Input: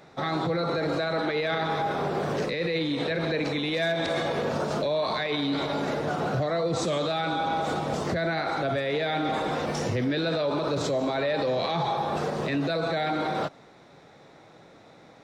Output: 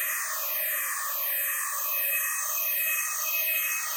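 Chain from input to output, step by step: Paulstretch 18×, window 1.00 s, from 3.24; whine 3200 Hz -33 dBFS; RIAA curve recording; wide varispeed 3.84×; endless phaser -1.4 Hz

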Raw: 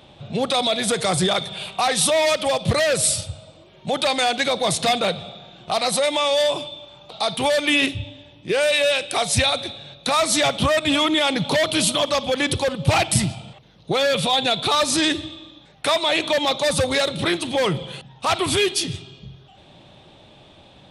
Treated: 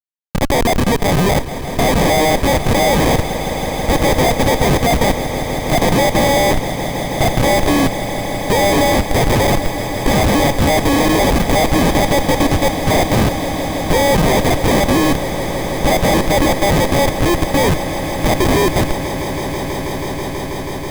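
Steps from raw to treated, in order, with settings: Schmitt trigger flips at -18 dBFS; sample-rate reducer 1400 Hz, jitter 0%; swelling echo 0.162 s, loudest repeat 8, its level -16 dB; gain +9 dB

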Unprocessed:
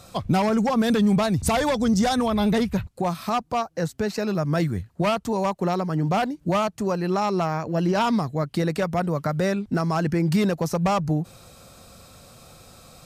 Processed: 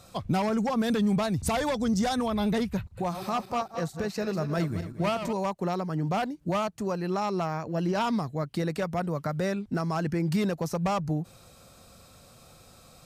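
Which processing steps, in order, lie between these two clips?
2.78–5.33 regenerating reverse delay 0.113 s, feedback 56%, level -8.5 dB; gain -5.5 dB

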